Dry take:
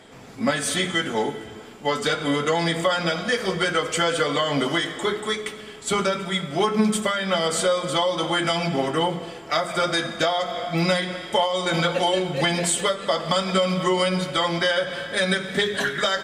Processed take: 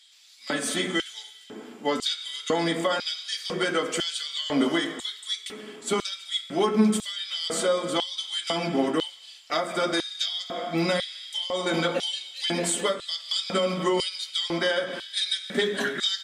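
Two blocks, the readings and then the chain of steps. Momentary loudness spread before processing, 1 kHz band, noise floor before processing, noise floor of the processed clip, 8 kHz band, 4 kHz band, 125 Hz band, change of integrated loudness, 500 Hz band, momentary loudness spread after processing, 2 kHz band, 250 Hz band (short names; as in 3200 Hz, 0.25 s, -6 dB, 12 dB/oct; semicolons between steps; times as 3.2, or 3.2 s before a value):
5 LU, -7.5 dB, -40 dBFS, -48 dBFS, -3.5 dB, -1.5 dB, -8.0 dB, -4.0 dB, -5.0 dB, 7 LU, -6.5 dB, -2.5 dB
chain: de-hum 93.35 Hz, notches 32; LFO high-pass square 1 Hz 250–3900 Hz; gain -4 dB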